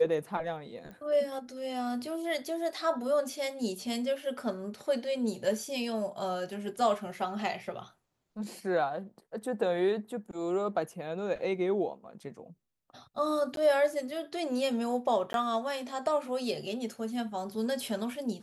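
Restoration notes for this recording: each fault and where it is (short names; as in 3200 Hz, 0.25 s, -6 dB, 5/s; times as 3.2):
0.91 pop -35 dBFS
13.56–13.57 gap 12 ms
15.33–15.34 gap 12 ms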